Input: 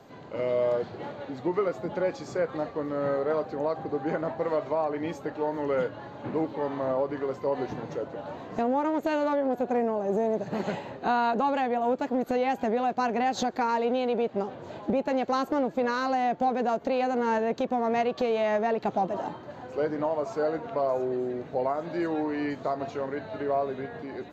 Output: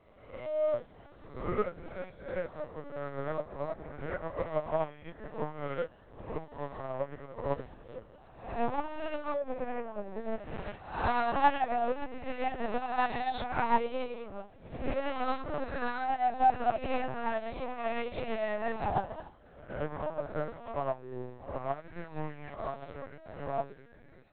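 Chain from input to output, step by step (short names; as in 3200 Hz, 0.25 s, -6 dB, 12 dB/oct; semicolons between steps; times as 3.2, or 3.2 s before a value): spectral swells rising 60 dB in 1.43 s; bell 380 Hz -5.5 dB 2.6 oct; in parallel at -11 dB: soft clip -23 dBFS, distortion -17 dB; on the sum: added harmonics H 2 -44 dB, 4 -23 dB, 5 -37 dB, 8 -38 dB, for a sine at -13 dBFS; flange 0.17 Hz, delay 9.8 ms, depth 7.7 ms, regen +5%; LPC vocoder at 8 kHz pitch kept; upward expander 2.5:1, over -37 dBFS; gain +4.5 dB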